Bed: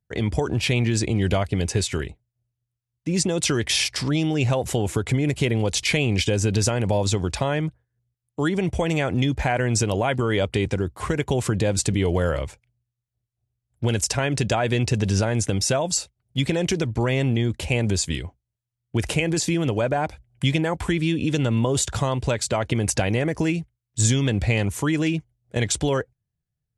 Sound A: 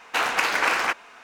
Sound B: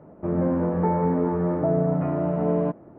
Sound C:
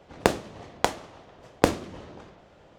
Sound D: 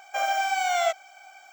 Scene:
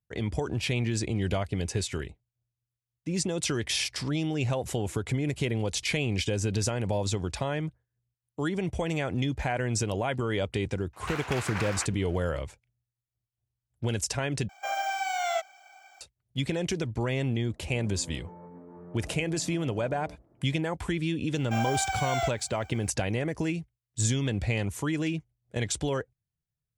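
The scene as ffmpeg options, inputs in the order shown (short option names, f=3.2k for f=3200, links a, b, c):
-filter_complex "[4:a]asplit=2[a][b];[0:a]volume=-7dB[c];[2:a]alimiter=limit=-22.5dB:level=0:latency=1:release=71[d];[c]asplit=2[e][f];[e]atrim=end=14.494[g];[a]atrim=end=1.52,asetpts=PTS-STARTPTS,volume=-5dB[h];[f]atrim=start=16.006[i];[1:a]atrim=end=1.23,asetpts=PTS-STARTPTS,volume=-13.5dB,afade=t=in:d=0.004:c=hsin,afade=t=out:st=1.226:d=0.004:c=hsin,adelay=10930[j];[d]atrim=end=2.98,asetpts=PTS-STARTPTS,volume=-17.5dB,afade=t=in:d=0.004:c=hsin,afade=t=out:st=2.976:d=0.004:c=hsin,adelay=17440[k];[b]atrim=end=1.52,asetpts=PTS-STARTPTS,volume=-5.5dB,afade=t=in:d=0.004:c=hsin,afade=t=out:st=1.516:d=0.004:c=hsin,adelay=21370[l];[g][h]acrossfade=d=0.004:c1=hsin:c2=hsin[m];[m][i]acrossfade=d=0.004:c1=hsin:c2=hsin[n];[n][j][k][l]amix=inputs=4:normalize=0"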